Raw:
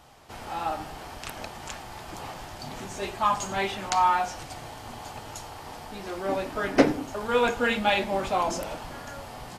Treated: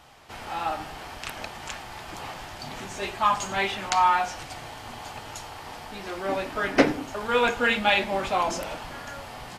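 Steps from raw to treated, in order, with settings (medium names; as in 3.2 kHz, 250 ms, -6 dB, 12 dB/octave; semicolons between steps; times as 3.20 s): peaking EQ 2.3 kHz +5.5 dB 2.2 oct; trim -1 dB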